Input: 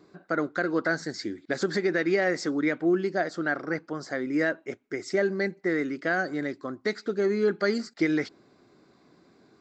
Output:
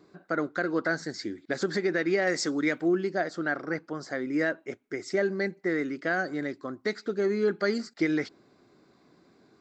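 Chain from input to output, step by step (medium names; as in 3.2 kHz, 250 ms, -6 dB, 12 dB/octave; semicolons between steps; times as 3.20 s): 2.27–2.88 s: treble shelf 4.1 kHz +11.5 dB; trim -1.5 dB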